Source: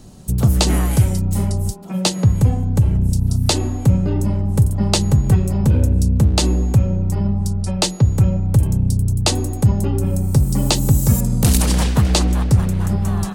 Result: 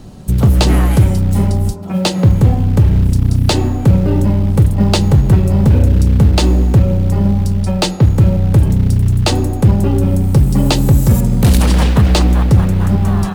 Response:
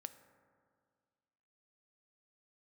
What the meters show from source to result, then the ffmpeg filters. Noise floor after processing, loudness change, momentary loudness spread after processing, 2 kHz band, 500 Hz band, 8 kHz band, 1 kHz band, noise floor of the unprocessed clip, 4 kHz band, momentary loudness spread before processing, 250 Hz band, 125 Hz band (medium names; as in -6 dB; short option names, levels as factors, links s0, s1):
-20 dBFS, +5.0 dB, 3 LU, +5.0 dB, +6.0 dB, -3.0 dB, +5.0 dB, -26 dBFS, +1.5 dB, 4 LU, +5.5 dB, +5.0 dB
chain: -filter_complex "[0:a]asoftclip=type=tanh:threshold=0.355,acrusher=bits=7:mode=log:mix=0:aa=0.000001,asplit=2[s0][s1];[1:a]atrim=start_sample=2205,lowpass=4600[s2];[s1][s2]afir=irnorm=-1:irlink=0,volume=2.24[s3];[s0][s3]amix=inputs=2:normalize=0"